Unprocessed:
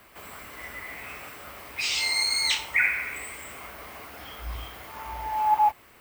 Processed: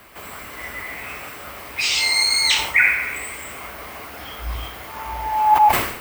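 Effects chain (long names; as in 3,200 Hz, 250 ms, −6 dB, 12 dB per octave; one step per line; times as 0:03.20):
level that may fall only so fast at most 77 dB per second
level +7 dB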